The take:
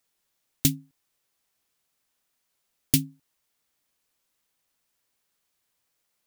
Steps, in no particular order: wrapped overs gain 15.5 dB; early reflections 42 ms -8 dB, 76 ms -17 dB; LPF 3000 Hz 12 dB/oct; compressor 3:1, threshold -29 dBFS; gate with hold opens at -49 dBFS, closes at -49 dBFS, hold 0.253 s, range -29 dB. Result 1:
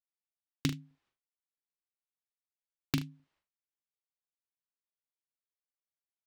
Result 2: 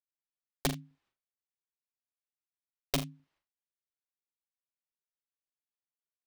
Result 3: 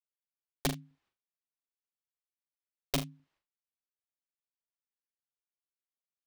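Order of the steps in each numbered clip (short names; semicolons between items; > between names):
gate with hold > LPF > compressor > wrapped overs > early reflections; LPF > wrapped overs > gate with hold > early reflections > compressor; LPF > wrapped overs > compressor > gate with hold > early reflections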